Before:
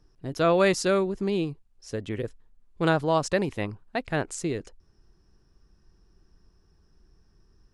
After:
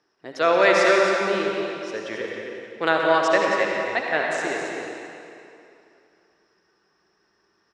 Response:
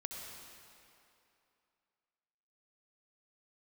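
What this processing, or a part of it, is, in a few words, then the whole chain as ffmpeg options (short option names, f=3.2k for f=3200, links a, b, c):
station announcement: -filter_complex "[0:a]highpass=470,lowpass=5k,equalizer=f=1.9k:t=o:w=0.58:g=5.5,aecho=1:1:177.8|271.1:0.282|0.355[a];[1:a]atrim=start_sample=2205[b];[a][b]afir=irnorm=-1:irlink=0,volume=7.5dB"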